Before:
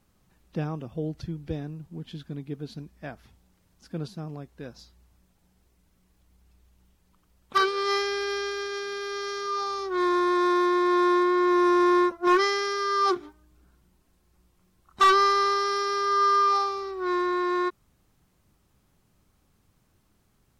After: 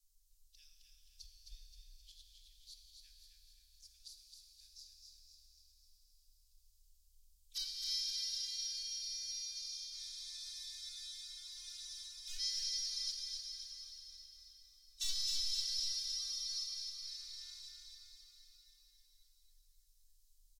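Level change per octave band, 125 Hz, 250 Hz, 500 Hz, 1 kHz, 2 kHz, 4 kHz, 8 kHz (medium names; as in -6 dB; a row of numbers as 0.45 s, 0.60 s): under -30 dB, under -40 dB, under -40 dB, under -40 dB, -31.0 dB, -3.5 dB, no reading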